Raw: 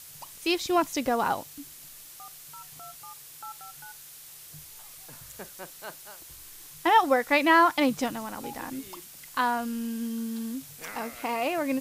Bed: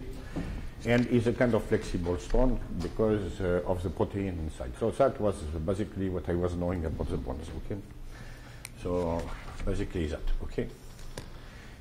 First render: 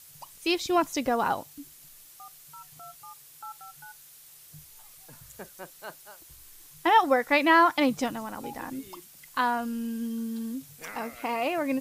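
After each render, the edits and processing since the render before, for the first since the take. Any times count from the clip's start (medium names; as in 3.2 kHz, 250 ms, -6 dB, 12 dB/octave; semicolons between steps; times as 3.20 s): noise reduction 6 dB, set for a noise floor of -47 dBFS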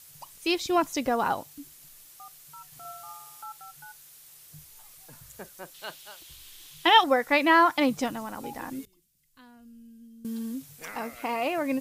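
2.67–3.44 s: flutter echo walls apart 9.6 m, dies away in 1 s; 5.74–7.04 s: peaking EQ 3.3 kHz +13 dB 1 oct; 8.85–10.25 s: amplifier tone stack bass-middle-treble 10-0-1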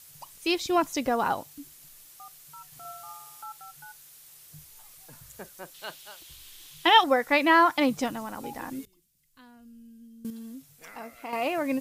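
10.30–11.33 s: feedback comb 680 Hz, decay 0.15 s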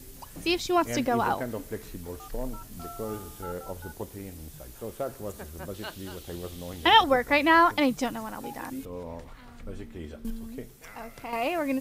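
add bed -8.5 dB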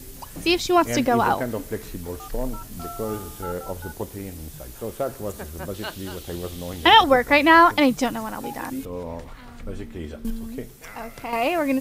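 trim +6 dB; peak limiter -2 dBFS, peak gain reduction 2.5 dB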